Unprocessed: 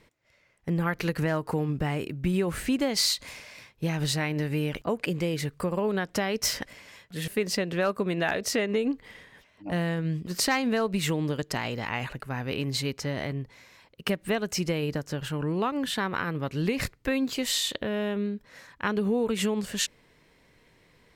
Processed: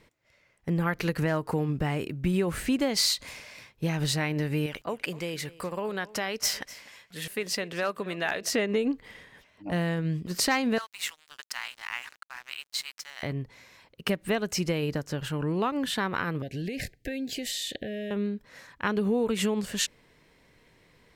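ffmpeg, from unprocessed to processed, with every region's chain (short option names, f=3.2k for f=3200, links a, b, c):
-filter_complex "[0:a]asettb=1/sr,asplit=3[a][b][c];[a]atrim=end=4.664[d];[b]atrim=start=4.66:end=8.5,asetpts=PTS-STARTPTS,afade=t=in:d=0.004:c=qsin,afade=t=out:st=3.836:d=0.004:c=qsin,lowshelf=f=480:g=-9.5,aecho=1:1:251:0.106,atrim=end_sample=169344[e];[c]atrim=start=8.496[f];[d][e]acrossfade=d=0.004:c1=hsin:c2=qsin[g];[g][f]acrossfade=d=0.004:c1=qsin:c2=hsin,asettb=1/sr,asplit=3[h][i][j];[h]atrim=end=10.784[k];[i]atrim=start=10.78:end=13.23,asetpts=PTS-STARTPTS,afade=t=in:d=0.004:c=qsin,afade=t=out:st=2.446:d=0.004:c=qsin,highpass=f=1.1k:w=0.5412,highpass=f=1.1k:w=1.3066,aeval=exprs='sgn(val(0))*max(abs(val(0))-0.00631,0)':c=same[l];[j]atrim=start=13.226[m];[k][l]acrossfade=d=0.004:c1=hsin:c2=qsin[n];[n][m]acrossfade=d=0.004:c1=qsin:c2=hsin,asettb=1/sr,asplit=3[o][p][q];[o]atrim=end=16.424[r];[p]atrim=start=16.42:end=18.11,asetpts=PTS-STARTPTS,afade=t=in:d=0.004:c=qsin,afade=t=out:st=1.686:d=0.004:c=qsin,acompressor=threshold=-30dB:ratio=4:attack=3.2:release=140:knee=1:detection=peak,asuperstop=centerf=1100:order=20:qfactor=1.4[s];[q]atrim=start=18.106[t];[r][s]acrossfade=d=0.004:c1=hsin:c2=qsin[u];[u][t]acrossfade=d=0.004:c1=qsin:c2=hsin"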